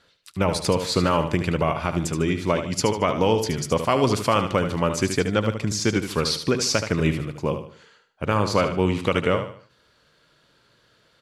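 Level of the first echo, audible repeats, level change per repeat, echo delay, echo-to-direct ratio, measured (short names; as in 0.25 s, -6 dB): -8.5 dB, 3, -9.0 dB, 75 ms, -8.0 dB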